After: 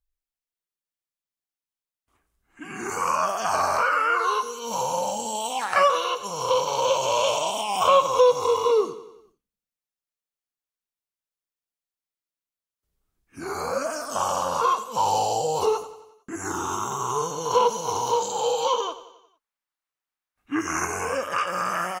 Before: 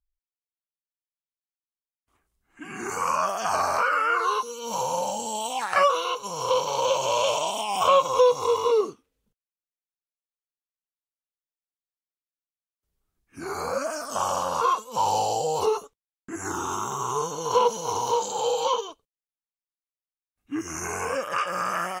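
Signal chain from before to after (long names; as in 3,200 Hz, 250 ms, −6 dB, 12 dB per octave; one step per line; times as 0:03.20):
0:18.80–0:20.85: parametric band 1,300 Hz +11 dB 2.4 octaves
repeating echo 90 ms, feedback 55%, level −15 dB
level +1 dB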